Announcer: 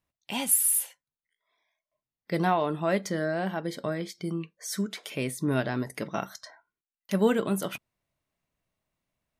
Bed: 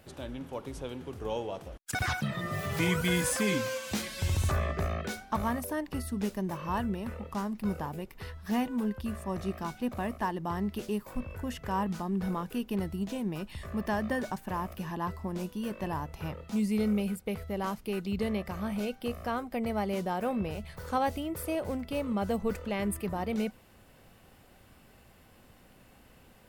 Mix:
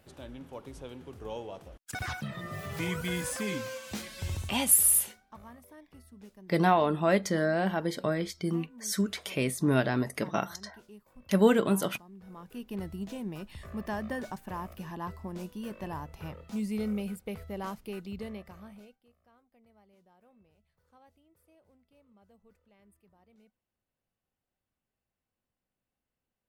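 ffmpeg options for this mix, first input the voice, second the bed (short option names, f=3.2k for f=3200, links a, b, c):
-filter_complex "[0:a]adelay=4200,volume=1.5dB[a];[1:a]volume=10dB,afade=t=out:st=4.33:d=0.23:silence=0.199526,afade=t=in:st=12.25:d=0.61:silence=0.177828,afade=t=out:st=17.68:d=1.33:silence=0.0398107[b];[a][b]amix=inputs=2:normalize=0"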